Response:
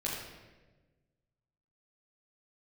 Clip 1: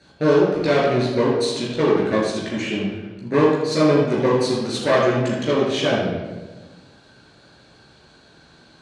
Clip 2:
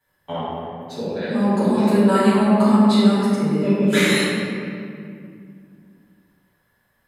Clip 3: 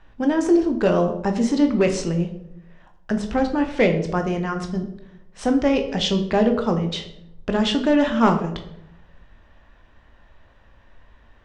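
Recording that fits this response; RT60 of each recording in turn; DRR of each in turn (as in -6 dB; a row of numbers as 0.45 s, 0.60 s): 1; 1.3 s, 2.3 s, 0.80 s; -5.5 dB, -13.0 dB, 4.5 dB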